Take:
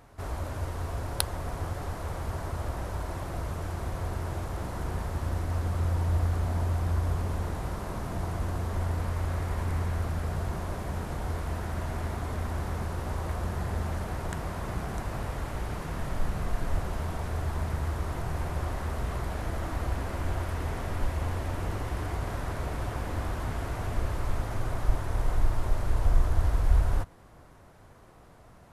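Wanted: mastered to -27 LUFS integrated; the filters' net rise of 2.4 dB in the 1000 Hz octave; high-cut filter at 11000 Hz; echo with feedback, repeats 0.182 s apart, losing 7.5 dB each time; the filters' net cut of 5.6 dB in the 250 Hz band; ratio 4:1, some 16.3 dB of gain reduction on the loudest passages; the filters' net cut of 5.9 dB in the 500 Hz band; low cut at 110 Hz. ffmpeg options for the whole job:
-af "highpass=110,lowpass=11k,equalizer=f=250:t=o:g=-5.5,equalizer=f=500:t=o:g=-9,equalizer=f=1k:t=o:g=6,acompressor=threshold=-45dB:ratio=4,aecho=1:1:182|364|546|728|910:0.422|0.177|0.0744|0.0312|0.0131,volume=19.5dB"

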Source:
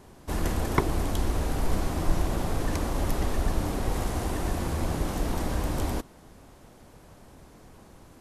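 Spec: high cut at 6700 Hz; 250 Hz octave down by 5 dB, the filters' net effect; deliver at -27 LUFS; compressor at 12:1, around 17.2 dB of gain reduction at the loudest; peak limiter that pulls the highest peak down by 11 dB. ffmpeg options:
-af "lowpass=6.7k,equalizer=f=250:t=o:g=-7,acompressor=threshold=-36dB:ratio=12,volume=19.5dB,alimiter=limit=-14dB:level=0:latency=1"

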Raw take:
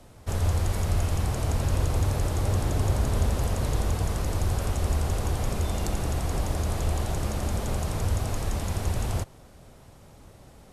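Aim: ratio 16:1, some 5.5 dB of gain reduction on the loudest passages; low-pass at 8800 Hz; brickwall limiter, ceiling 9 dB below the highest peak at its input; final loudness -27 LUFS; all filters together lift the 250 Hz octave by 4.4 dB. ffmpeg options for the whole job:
-af "lowpass=8.8k,equalizer=f=250:t=o:g=6,acompressor=threshold=-24dB:ratio=16,volume=9dB,alimiter=limit=-17.5dB:level=0:latency=1"

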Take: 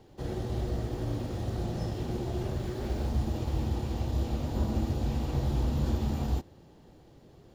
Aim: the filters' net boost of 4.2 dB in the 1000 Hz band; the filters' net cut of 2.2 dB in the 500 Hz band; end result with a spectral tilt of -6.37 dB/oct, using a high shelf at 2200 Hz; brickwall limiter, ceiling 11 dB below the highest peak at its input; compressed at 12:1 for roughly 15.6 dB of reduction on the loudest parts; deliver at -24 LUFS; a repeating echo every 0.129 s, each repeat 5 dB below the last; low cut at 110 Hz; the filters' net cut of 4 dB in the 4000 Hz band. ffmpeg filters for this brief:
-af "highpass=110,equalizer=f=500:t=o:g=-5,equalizer=f=1k:t=o:g=7.5,highshelf=f=2.2k:g=3,equalizer=f=4k:t=o:g=-8.5,acompressor=threshold=-45dB:ratio=12,alimiter=level_in=20dB:limit=-24dB:level=0:latency=1,volume=-20dB,aecho=1:1:129|258|387|516|645|774|903:0.562|0.315|0.176|0.0988|0.0553|0.031|0.0173,volume=28dB"

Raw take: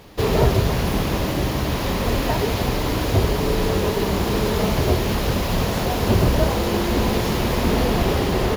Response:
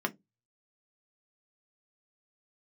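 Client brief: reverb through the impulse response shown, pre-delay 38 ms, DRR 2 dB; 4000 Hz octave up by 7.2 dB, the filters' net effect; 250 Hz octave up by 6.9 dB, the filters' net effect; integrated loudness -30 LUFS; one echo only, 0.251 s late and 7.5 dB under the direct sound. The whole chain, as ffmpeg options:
-filter_complex "[0:a]equalizer=f=250:t=o:g=9,equalizer=f=4k:t=o:g=9,aecho=1:1:251:0.422,asplit=2[a][b];[1:a]atrim=start_sample=2205,adelay=38[c];[b][c]afir=irnorm=-1:irlink=0,volume=-8.5dB[d];[a][d]amix=inputs=2:normalize=0,volume=-17dB"

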